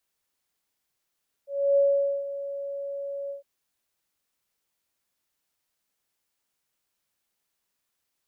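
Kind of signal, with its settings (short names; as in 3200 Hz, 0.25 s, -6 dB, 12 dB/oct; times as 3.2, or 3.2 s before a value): ADSR sine 560 Hz, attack 0.3 s, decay 0.468 s, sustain -14 dB, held 1.83 s, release 0.127 s -16.5 dBFS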